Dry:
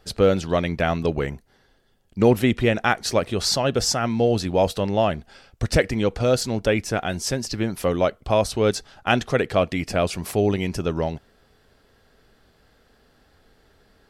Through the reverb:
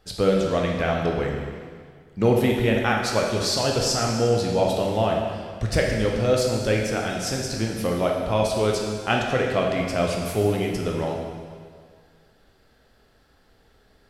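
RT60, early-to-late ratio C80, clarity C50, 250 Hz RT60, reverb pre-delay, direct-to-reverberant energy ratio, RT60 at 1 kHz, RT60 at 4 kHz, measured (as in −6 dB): 1.9 s, 4.0 dB, 2.0 dB, 1.9 s, 6 ms, −0.5 dB, 1.9 s, 1.8 s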